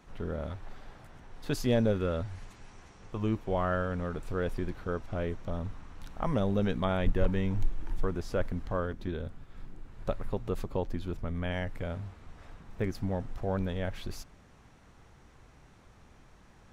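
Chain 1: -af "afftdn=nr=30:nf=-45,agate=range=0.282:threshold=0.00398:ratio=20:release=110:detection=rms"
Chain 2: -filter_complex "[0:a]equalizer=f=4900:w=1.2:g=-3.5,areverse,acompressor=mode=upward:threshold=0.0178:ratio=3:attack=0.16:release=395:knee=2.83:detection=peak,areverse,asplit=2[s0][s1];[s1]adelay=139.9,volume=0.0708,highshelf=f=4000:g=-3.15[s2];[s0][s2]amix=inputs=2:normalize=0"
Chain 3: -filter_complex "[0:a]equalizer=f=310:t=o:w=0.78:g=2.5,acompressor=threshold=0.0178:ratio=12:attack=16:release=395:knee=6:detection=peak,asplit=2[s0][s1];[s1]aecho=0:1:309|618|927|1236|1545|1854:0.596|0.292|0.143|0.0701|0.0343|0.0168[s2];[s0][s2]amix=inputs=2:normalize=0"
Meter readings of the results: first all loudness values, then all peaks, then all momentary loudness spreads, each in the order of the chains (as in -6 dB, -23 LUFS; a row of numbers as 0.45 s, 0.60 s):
-33.5 LUFS, -34.0 LUFS, -41.5 LUFS; -16.0 dBFS, -16.0 dBFS, -23.0 dBFS; 15 LU, 20 LU, 14 LU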